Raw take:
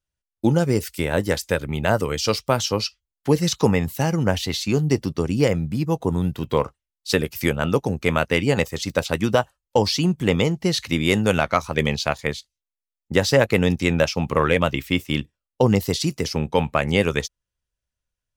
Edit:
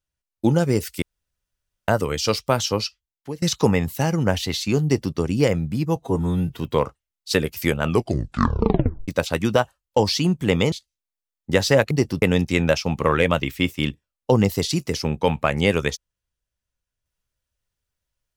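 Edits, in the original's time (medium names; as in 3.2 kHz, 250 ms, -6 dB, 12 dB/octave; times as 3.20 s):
1.02–1.88 s: room tone
2.76–3.42 s: fade out, to -23 dB
4.84–5.15 s: copy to 13.53 s
5.96–6.38 s: stretch 1.5×
7.62 s: tape stop 1.25 s
10.51–12.34 s: delete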